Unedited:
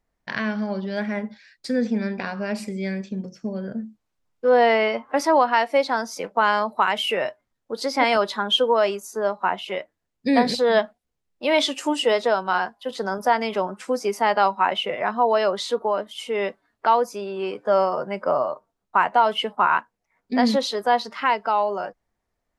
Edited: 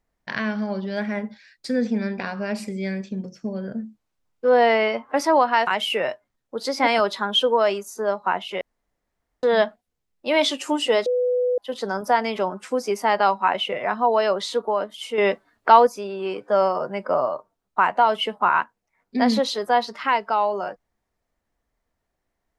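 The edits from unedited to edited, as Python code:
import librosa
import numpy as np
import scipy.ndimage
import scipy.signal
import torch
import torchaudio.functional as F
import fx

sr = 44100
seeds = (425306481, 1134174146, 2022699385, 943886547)

y = fx.edit(x, sr, fx.cut(start_s=5.67, length_s=1.17),
    fx.room_tone_fill(start_s=9.78, length_s=0.82),
    fx.bleep(start_s=12.23, length_s=0.52, hz=496.0, db=-18.0),
    fx.clip_gain(start_s=16.35, length_s=0.69, db=5.5), tone=tone)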